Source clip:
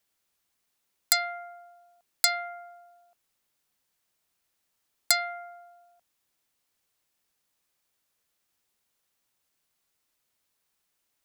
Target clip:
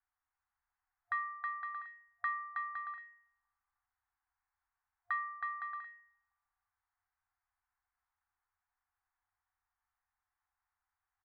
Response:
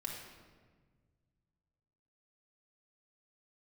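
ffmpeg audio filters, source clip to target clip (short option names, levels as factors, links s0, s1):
-af "aecho=1:1:320|512|627.2|696.3|737.8:0.631|0.398|0.251|0.158|0.1,highpass=f=160:t=q:w=0.5412,highpass=f=160:t=q:w=1.307,lowpass=f=2000:t=q:w=0.5176,lowpass=f=2000:t=q:w=0.7071,lowpass=f=2000:t=q:w=1.932,afreqshift=-220,afftfilt=real='re*(1-between(b*sr/4096,100,710))':imag='im*(1-between(b*sr/4096,100,710))':win_size=4096:overlap=0.75,volume=0.668"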